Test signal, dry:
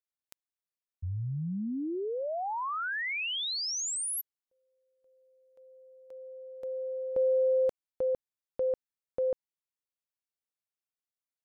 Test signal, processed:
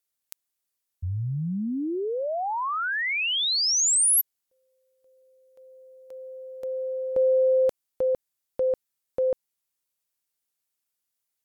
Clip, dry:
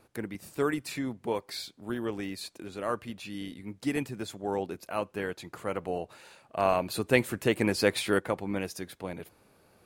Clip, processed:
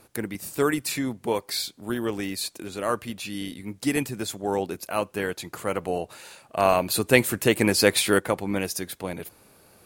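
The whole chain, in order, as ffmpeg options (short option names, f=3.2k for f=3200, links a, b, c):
-af "aemphasis=mode=production:type=cd,volume=5.5dB"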